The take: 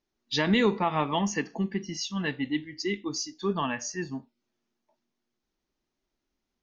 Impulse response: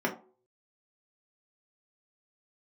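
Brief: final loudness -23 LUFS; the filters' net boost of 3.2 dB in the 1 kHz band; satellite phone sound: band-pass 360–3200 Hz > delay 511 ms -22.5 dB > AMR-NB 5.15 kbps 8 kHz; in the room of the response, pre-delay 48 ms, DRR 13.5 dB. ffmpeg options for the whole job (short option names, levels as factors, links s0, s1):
-filter_complex "[0:a]equalizer=f=1000:t=o:g=4,asplit=2[s0][s1];[1:a]atrim=start_sample=2205,adelay=48[s2];[s1][s2]afir=irnorm=-1:irlink=0,volume=0.0708[s3];[s0][s3]amix=inputs=2:normalize=0,highpass=360,lowpass=3200,aecho=1:1:511:0.075,volume=2.82" -ar 8000 -c:a libopencore_amrnb -b:a 5150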